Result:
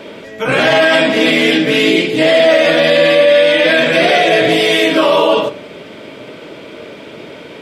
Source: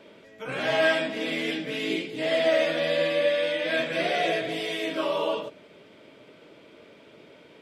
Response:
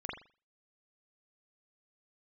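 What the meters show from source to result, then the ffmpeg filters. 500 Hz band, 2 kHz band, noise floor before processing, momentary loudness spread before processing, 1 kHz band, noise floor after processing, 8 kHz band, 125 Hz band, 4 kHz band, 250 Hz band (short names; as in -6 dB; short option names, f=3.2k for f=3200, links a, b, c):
+15.0 dB, +15.5 dB, -53 dBFS, 7 LU, +15.5 dB, -33 dBFS, +16.5 dB, +16.5 dB, +16.5 dB, +17.0 dB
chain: -filter_complex "[0:a]asplit=2[a][b];[1:a]atrim=start_sample=2205[c];[b][c]afir=irnorm=-1:irlink=0,volume=-12.5dB[d];[a][d]amix=inputs=2:normalize=0,alimiter=level_in=19dB:limit=-1dB:release=50:level=0:latency=1,volume=-1dB"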